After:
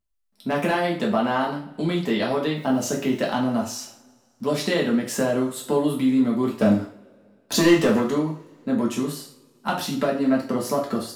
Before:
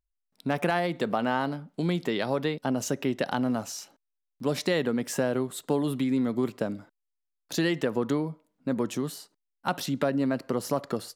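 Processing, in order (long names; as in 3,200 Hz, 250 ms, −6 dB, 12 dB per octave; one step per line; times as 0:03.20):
0:02.55–0:03.27: background noise white −65 dBFS
0:06.59–0:08.01: leveller curve on the samples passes 2
coupled-rooms reverb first 0.41 s, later 2.3 s, from −27 dB, DRR −3 dB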